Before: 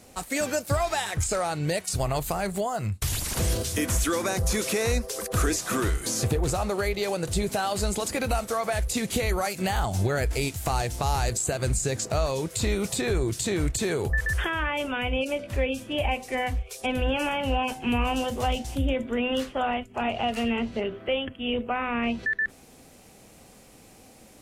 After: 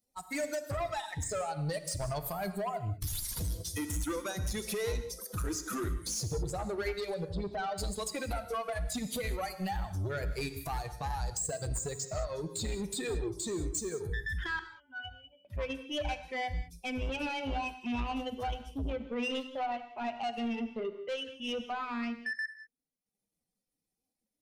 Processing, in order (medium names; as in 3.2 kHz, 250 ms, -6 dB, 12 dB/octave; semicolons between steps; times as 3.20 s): expander on every frequency bin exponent 2; 13.47–14.07 s: resonant high shelf 4.5 kHz +9 dB, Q 3; compression 2:1, threshold -32 dBFS, peak gain reduction 7.5 dB; 7.14–7.78 s: distance through air 300 m; gain riding 2 s; 14.59–15.45 s: pitch-class resonator F#, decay 0.21 s; saturation -32 dBFS, distortion -13 dB; transient shaper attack -3 dB, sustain -8 dB; gated-style reverb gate 220 ms flat, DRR 9.5 dB; trim +3 dB